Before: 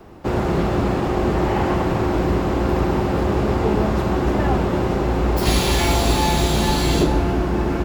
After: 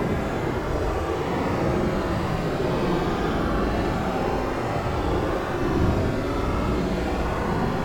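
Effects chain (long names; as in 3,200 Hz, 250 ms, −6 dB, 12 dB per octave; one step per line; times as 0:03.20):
harmonic generator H 6 −11 dB, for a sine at −4 dBFS
extreme stretch with random phases 15×, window 0.05 s, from 0:00.40
level −6.5 dB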